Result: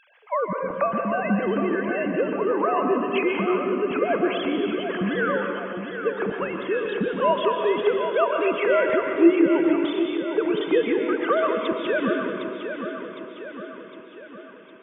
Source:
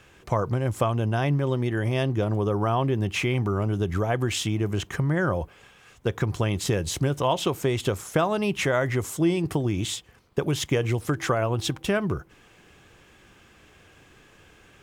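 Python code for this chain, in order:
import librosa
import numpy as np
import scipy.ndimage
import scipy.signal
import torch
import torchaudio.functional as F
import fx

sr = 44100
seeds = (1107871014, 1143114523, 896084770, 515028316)

y = fx.sine_speech(x, sr)
y = fx.echo_feedback(y, sr, ms=759, feedback_pct=53, wet_db=-8.5)
y = fx.rev_plate(y, sr, seeds[0], rt60_s=1.7, hf_ratio=1.0, predelay_ms=110, drr_db=2.5)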